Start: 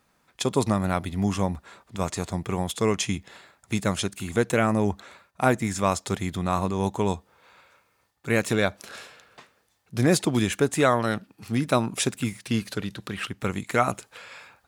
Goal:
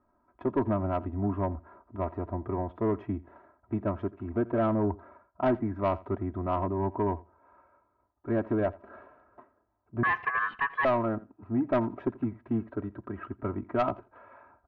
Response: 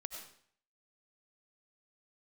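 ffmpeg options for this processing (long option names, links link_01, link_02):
-filter_complex "[0:a]lowpass=frequency=1200:width=0.5412,lowpass=frequency=1200:width=1.3066,aecho=1:1:3.1:0.89,asoftclip=type=tanh:threshold=-14.5dB,asettb=1/sr,asplit=3[link_01][link_02][link_03];[link_01]atrim=end=10.034[link_04];[link_02]atrim=start=10.03:end=10.85,asetpts=PTS-STARTPTS,afade=type=in:duration=0.004:curve=qsin,afade=type=out:start_time=0.816:duration=0.004:curve=qsin,aeval=exprs='val(0)*sin(2*PI*1400*n/s)':channel_layout=same[link_05];[link_03]atrim=start=10.846[link_06];[link_04][link_05]acrossfade=duration=0.004:curve1=hsin:curve2=qsin[link_07];[link_07][link_06]acrossfade=duration=0.004:curve1=qsin:curve2=hsin,aecho=1:1:84|168:0.0891|0.0134,volume=-3.5dB"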